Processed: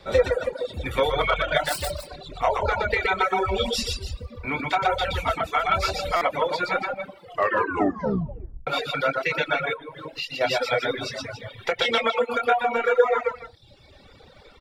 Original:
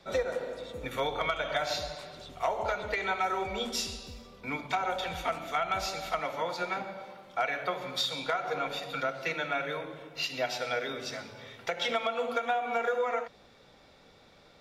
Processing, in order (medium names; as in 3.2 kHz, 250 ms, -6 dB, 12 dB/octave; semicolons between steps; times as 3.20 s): 1.65–2.41 s: self-modulated delay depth 0.23 ms; band-stop 680 Hz, Q 18; doubling 26 ms -9.5 dB; loudspeakers at several distances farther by 41 m -1 dB, 95 m -7 dB; 9.73–10.41 s: compression 6:1, threshold -35 dBFS, peak gain reduction 7.5 dB; graphic EQ with 31 bands 500 Hz +4 dB, 6.3 kHz -8 dB, 12.5 kHz -7 dB; reverb removal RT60 0.57 s; resonant low shelf 130 Hz +6.5 dB, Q 1.5; 7.19 s: tape stop 1.48 s; reverb removal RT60 1.3 s; buffer glitch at 6.16 s, samples 256, times 8; trim +7.5 dB